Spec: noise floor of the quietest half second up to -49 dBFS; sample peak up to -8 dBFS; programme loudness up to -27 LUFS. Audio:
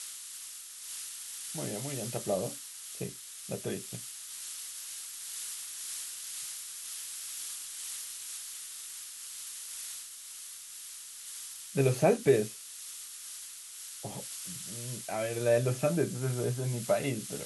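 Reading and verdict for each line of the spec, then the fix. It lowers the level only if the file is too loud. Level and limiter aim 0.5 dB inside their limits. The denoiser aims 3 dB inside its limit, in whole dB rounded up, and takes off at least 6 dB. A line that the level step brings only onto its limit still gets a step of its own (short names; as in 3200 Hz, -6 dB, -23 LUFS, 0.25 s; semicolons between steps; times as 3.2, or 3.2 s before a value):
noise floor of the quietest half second -46 dBFS: fail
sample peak -12.0 dBFS: OK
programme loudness -35.0 LUFS: OK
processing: denoiser 6 dB, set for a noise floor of -46 dBFS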